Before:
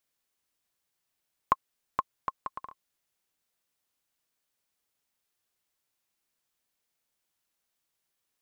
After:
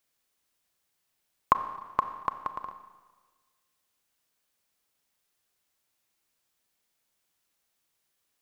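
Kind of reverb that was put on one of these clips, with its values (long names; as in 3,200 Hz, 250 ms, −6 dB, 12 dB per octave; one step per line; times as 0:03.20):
four-comb reverb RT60 1.4 s, combs from 29 ms, DRR 9.5 dB
level +3.5 dB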